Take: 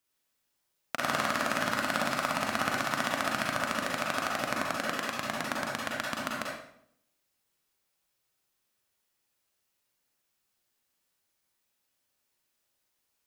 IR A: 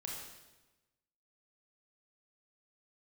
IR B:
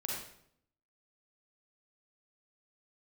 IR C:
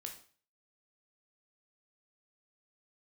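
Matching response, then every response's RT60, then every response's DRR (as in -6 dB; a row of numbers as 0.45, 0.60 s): B; 1.1, 0.70, 0.45 s; -2.5, -3.0, 2.0 dB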